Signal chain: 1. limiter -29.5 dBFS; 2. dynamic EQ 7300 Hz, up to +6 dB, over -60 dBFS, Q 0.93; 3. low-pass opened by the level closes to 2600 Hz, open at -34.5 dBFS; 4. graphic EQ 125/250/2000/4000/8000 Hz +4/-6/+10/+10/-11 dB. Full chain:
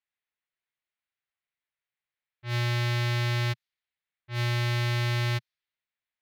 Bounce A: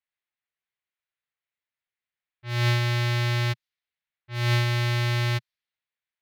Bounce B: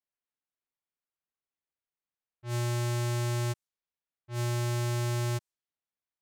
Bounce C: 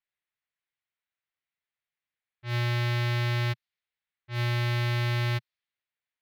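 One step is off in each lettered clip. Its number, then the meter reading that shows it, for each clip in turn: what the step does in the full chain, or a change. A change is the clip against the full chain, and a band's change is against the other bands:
1, mean gain reduction 2.5 dB; 4, 8 kHz band +8.0 dB; 2, 4 kHz band -1.5 dB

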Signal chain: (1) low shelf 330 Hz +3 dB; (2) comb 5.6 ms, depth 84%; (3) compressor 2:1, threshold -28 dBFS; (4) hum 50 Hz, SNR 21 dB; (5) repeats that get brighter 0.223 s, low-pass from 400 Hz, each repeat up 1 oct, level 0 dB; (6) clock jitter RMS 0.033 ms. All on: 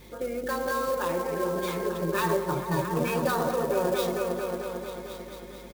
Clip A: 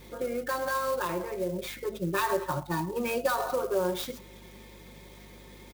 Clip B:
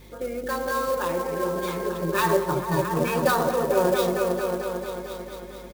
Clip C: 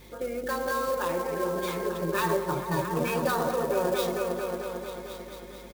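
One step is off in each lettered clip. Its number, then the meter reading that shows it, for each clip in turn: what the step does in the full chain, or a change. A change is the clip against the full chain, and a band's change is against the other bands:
5, momentary loudness spread change +10 LU; 3, loudness change +3.5 LU; 1, 125 Hz band -1.5 dB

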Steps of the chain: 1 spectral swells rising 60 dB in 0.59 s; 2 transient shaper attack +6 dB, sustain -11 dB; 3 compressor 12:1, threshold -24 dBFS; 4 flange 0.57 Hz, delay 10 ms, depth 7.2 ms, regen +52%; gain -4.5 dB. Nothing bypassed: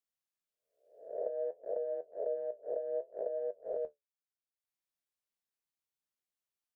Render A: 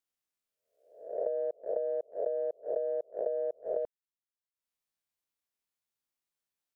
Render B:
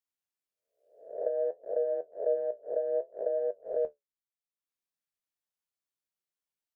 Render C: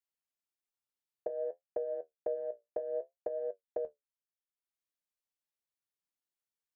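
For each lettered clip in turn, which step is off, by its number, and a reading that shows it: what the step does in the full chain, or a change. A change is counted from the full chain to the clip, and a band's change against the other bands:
4, loudness change +4.0 LU; 3, mean gain reduction 4.0 dB; 1, crest factor change +2.0 dB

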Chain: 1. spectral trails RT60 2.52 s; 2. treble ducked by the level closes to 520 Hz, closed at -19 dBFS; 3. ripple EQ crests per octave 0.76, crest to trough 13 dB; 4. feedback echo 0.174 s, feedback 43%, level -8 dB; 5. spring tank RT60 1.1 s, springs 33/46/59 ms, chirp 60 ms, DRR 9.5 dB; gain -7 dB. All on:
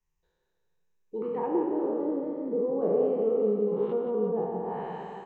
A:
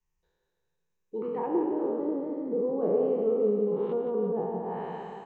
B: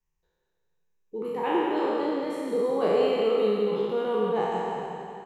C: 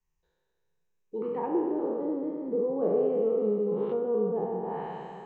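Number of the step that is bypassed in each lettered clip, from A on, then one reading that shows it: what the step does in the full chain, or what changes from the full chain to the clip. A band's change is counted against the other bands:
5, echo-to-direct -4.5 dB to -7.0 dB; 2, 1 kHz band +6.5 dB; 4, echo-to-direct -4.5 dB to -9.5 dB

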